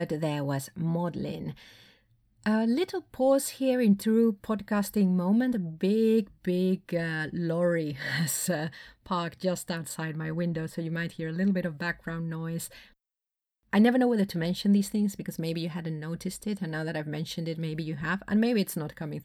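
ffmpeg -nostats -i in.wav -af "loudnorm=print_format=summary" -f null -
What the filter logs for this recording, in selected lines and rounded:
Input Integrated:    -29.1 LUFS
Input True Peak:     -11.7 dBTP
Input LRA:             4.7 LU
Input Threshold:     -39.3 LUFS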